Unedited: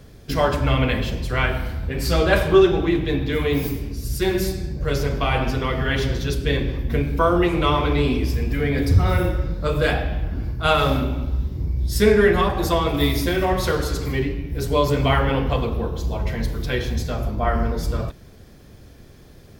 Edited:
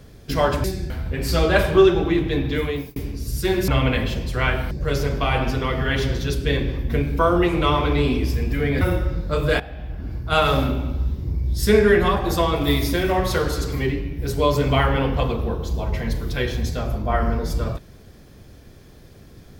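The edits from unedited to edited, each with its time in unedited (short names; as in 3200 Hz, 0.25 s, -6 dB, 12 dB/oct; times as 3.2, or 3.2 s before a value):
0.64–1.67 swap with 4.45–4.71
3.34–3.73 fade out
8.81–9.14 cut
9.93–10.73 fade in, from -16 dB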